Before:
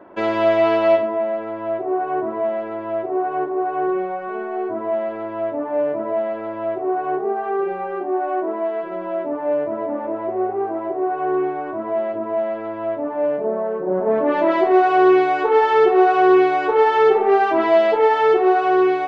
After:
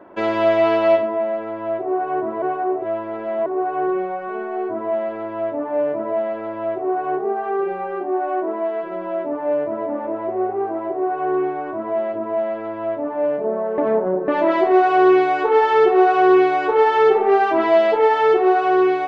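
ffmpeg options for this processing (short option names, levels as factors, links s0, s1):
-filter_complex "[0:a]asplit=5[s0][s1][s2][s3][s4];[s0]atrim=end=2.422[s5];[s1]atrim=start=2.418:end=3.462,asetpts=PTS-STARTPTS,areverse[s6];[s2]atrim=start=3.458:end=13.782[s7];[s3]atrim=start=13.778:end=14.282,asetpts=PTS-STARTPTS,areverse[s8];[s4]atrim=start=14.278[s9];[s5][s6]acrossfade=d=0.004:c1=hsin:c2=hsin[s10];[s10][s7]acrossfade=d=0.004:c1=hsin:c2=hsin[s11];[s11][s8]acrossfade=d=0.004:c1=hsin:c2=hsin[s12];[s12][s9]acrossfade=d=0.004:c1=hsin:c2=hsin"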